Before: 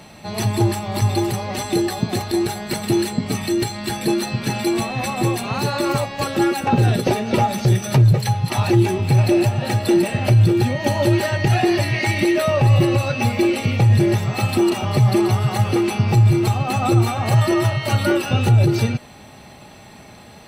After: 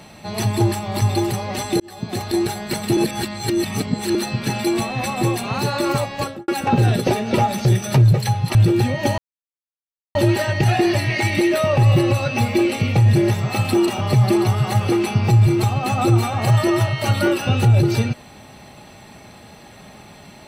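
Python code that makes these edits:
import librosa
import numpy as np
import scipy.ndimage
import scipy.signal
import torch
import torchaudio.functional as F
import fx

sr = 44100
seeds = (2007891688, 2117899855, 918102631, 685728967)

y = fx.studio_fade_out(x, sr, start_s=6.17, length_s=0.31)
y = fx.edit(y, sr, fx.fade_in_span(start_s=1.8, length_s=0.5),
    fx.reverse_span(start_s=2.97, length_s=1.18),
    fx.cut(start_s=8.55, length_s=1.81),
    fx.insert_silence(at_s=10.99, length_s=0.97), tone=tone)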